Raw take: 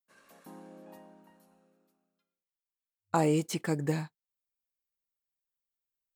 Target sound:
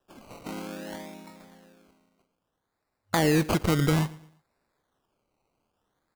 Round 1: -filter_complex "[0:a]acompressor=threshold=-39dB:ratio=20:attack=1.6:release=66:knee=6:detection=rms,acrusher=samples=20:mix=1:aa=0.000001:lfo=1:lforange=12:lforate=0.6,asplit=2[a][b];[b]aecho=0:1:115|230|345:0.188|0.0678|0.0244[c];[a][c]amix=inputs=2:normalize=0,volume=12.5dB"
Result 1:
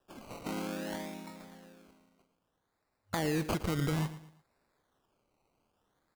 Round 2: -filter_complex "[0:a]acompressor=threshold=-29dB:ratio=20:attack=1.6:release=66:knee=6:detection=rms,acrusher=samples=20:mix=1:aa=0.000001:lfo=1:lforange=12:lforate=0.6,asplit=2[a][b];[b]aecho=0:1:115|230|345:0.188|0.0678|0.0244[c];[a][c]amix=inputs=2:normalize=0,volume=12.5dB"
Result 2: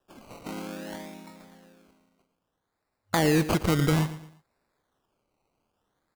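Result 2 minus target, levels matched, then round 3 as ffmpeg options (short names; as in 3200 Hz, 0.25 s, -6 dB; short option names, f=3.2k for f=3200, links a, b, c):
echo-to-direct +6 dB
-filter_complex "[0:a]acompressor=threshold=-29dB:ratio=20:attack=1.6:release=66:knee=6:detection=rms,acrusher=samples=20:mix=1:aa=0.000001:lfo=1:lforange=12:lforate=0.6,asplit=2[a][b];[b]aecho=0:1:115|230|345:0.0944|0.034|0.0122[c];[a][c]amix=inputs=2:normalize=0,volume=12.5dB"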